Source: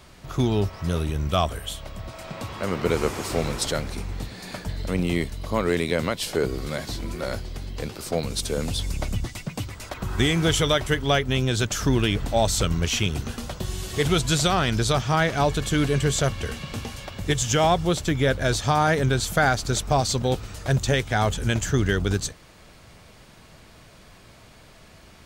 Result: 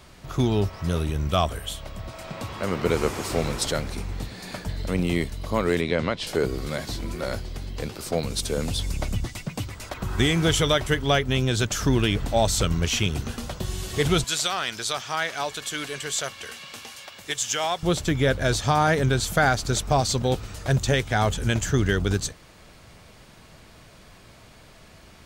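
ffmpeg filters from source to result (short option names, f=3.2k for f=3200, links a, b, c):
-filter_complex "[0:a]asettb=1/sr,asplit=3[a][b][c];[a]atrim=end=5.814[d];[b]atrim=start=5.81:end=6.27,asetpts=PTS-STARTPTS,afade=t=in:d=0.004:c=qsin,afade=t=out:st=0.456:d=0.004:c=qsin,lowpass=4.5k[e];[c]atrim=start=6.266[f];[d][e]acrossfade=d=0.004:c1=hsin:c2=qsin[g];[g][f]acrossfade=d=0.004:c1=qsin:c2=hsin,asettb=1/sr,asplit=3[h][i][j];[h]atrim=end=14.244[k];[i]atrim=start=14.24:end=17.83,asetpts=PTS-STARTPTS,afade=t=in:d=0.004:c=qsin,afade=t=out:st=3.586:d=0.004:c=qsin,highpass=f=1.4k:p=1[l];[j]atrim=start=17.826[m];[k][l]acrossfade=d=0.004:c1=hsin:c2=qsin[n];[n][m]acrossfade=d=0.004:c1=qsin:c2=hsin"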